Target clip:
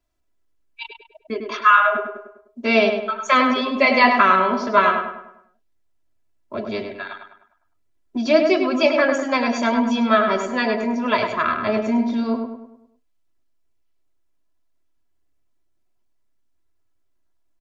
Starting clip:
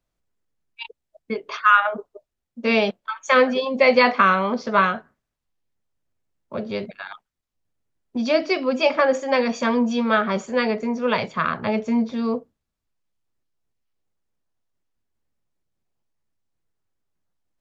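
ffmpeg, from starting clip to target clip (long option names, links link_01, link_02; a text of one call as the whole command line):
ffmpeg -i in.wav -filter_complex "[0:a]aecho=1:1:3:0.74,asplit=2[link_01][link_02];[link_02]adelay=101,lowpass=frequency=2600:poles=1,volume=-5dB,asplit=2[link_03][link_04];[link_04]adelay=101,lowpass=frequency=2600:poles=1,volume=0.46,asplit=2[link_05][link_06];[link_06]adelay=101,lowpass=frequency=2600:poles=1,volume=0.46,asplit=2[link_07][link_08];[link_08]adelay=101,lowpass=frequency=2600:poles=1,volume=0.46,asplit=2[link_09][link_10];[link_10]adelay=101,lowpass=frequency=2600:poles=1,volume=0.46,asplit=2[link_11][link_12];[link_12]adelay=101,lowpass=frequency=2600:poles=1,volume=0.46[link_13];[link_01][link_03][link_05][link_07][link_09][link_11][link_13]amix=inputs=7:normalize=0" out.wav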